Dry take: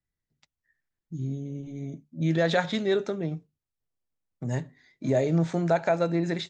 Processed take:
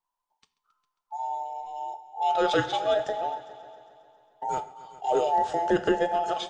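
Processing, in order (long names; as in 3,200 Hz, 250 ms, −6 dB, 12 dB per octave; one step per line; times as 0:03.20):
frequency inversion band by band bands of 1,000 Hz
echo machine with several playback heads 135 ms, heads all three, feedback 45%, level −21 dB
on a send at −12.5 dB: convolution reverb, pre-delay 3 ms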